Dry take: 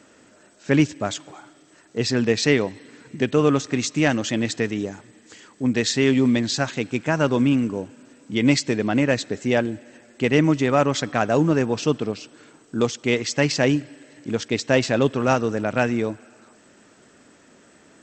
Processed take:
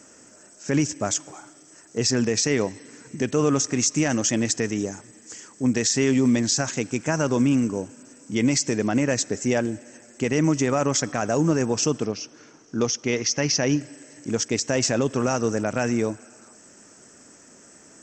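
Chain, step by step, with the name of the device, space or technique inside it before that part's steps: 12.05–13.81 elliptic low-pass 6100 Hz, stop band 50 dB; over-bright horn tweeter (resonant high shelf 4800 Hz +6.5 dB, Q 3; limiter -11.5 dBFS, peak gain reduction 9.5 dB)

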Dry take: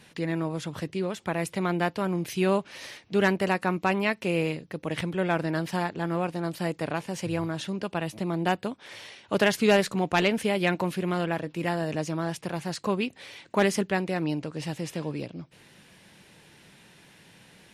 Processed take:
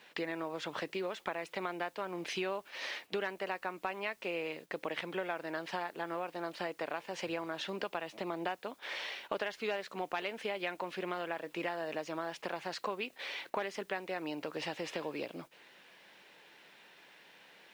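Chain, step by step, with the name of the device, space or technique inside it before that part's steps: baby monitor (BPF 470–4000 Hz; compressor 6:1, threshold -40 dBFS, peak gain reduction 20.5 dB; white noise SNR 29 dB; gate -55 dBFS, range -7 dB); gain +5.5 dB

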